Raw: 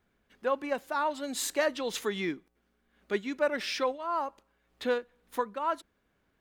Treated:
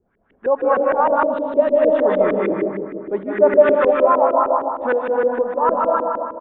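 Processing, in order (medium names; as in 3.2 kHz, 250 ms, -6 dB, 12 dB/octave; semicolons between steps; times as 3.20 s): algorithmic reverb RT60 2.8 s, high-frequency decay 0.3×, pre-delay 115 ms, DRR -3 dB; LFO low-pass saw up 6.5 Hz 350–2100 Hz; 1.23–1.99 s: high-order bell 1.3 kHz -10.5 dB; resampled via 8 kHz; dynamic bell 760 Hz, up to +5 dB, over -34 dBFS, Q 1.2; trim +4.5 dB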